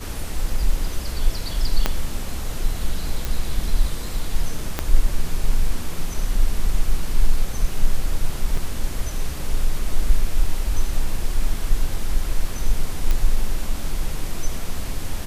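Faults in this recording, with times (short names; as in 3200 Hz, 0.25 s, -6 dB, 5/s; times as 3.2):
1.86 pop -4 dBFS
3.25 pop
4.79 pop -7 dBFS
8.57 gap 3.7 ms
13.11 pop -9 dBFS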